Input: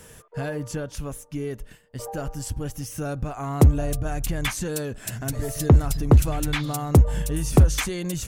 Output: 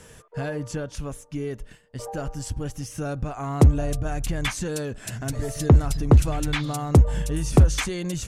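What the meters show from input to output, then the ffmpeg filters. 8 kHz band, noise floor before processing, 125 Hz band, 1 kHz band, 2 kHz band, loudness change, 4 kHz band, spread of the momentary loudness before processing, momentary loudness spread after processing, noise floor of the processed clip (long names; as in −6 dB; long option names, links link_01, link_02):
−2.0 dB, −49 dBFS, 0.0 dB, 0.0 dB, 0.0 dB, 0.0 dB, 0.0 dB, 15 LU, 15 LU, −49 dBFS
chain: -af "lowpass=9100"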